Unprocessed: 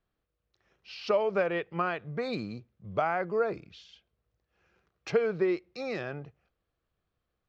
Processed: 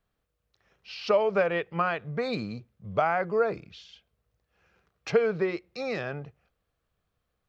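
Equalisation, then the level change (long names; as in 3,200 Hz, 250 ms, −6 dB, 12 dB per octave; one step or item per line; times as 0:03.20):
parametric band 300 Hz −3 dB 0.4 octaves
notch filter 360 Hz, Q 12
+3.5 dB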